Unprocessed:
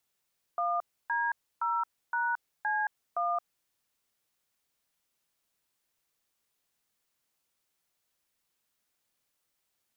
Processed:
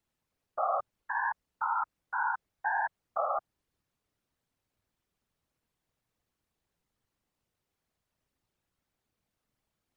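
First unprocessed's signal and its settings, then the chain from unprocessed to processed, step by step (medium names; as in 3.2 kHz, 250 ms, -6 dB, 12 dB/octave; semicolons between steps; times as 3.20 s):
DTMF "1D0#C1", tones 222 ms, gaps 295 ms, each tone -29.5 dBFS
tilt EQ -3 dB/octave; whisper effect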